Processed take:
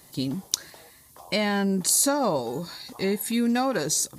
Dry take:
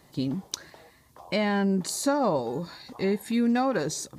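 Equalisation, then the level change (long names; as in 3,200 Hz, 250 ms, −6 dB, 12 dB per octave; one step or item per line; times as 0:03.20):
high-shelf EQ 3,800 Hz +11 dB
parametric band 11,000 Hz +5 dB 0.65 octaves
0.0 dB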